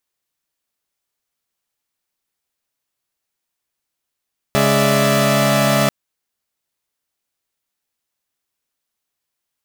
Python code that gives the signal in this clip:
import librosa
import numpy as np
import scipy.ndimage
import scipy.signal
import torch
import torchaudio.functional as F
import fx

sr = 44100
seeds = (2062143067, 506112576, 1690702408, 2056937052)

y = fx.chord(sr, length_s=1.34, notes=(49, 56, 74, 76), wave='saw', level_db=-16.0)